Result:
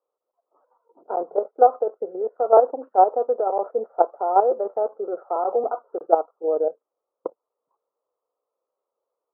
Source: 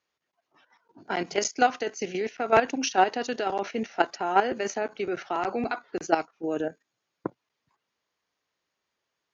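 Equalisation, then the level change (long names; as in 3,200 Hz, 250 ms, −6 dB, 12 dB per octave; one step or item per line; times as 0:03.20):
high-pass with resonance 500 Hz, resonance Q 4.9
Chebyshev low-pass filter 1,300 Hz, order 6
dynamic equaliser 710 Hz, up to +5 dB, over −30 dBFS, Q 2.2
−2.5 dB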